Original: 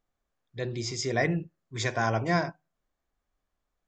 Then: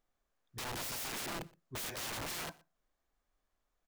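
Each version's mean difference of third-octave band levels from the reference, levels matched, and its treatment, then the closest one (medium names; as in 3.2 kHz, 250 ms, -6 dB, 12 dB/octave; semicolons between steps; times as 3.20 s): 16.5 dB: peaking EQ 110 Hz -5 dB 2.3 oct; compression 5:1, threshold -30 dBFS, peak gain reduction 8.5 dB; integer overflow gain 35.5 dB; on a send: delay 120 ms -24 dB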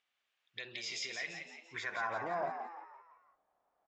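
9.5 dB: compression, threshold -34 dBFS, peak gain reduction 13.5 dB; peak limiter -32.5 dBFS, peak gain reduction 9 dB; band-pass sweep 2.8 kHz -> 750 Hz, 1.35–2.41 s; frequency-shifting echo 170 ms, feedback 46%, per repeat +81 Hz, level -7 dB; trim +13 dB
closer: second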